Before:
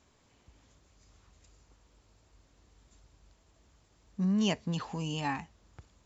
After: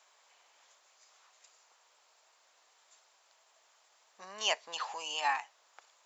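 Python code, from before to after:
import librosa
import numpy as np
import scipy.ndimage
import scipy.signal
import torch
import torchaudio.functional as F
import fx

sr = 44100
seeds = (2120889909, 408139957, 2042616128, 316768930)

y = scipy.signal.sosfilt(scipy.signal.butter(4, 650.0, 'highpass', fs=sr, output='sos'), x)
y = F.gain(torch.from_numpy(y), 4.5).numpy()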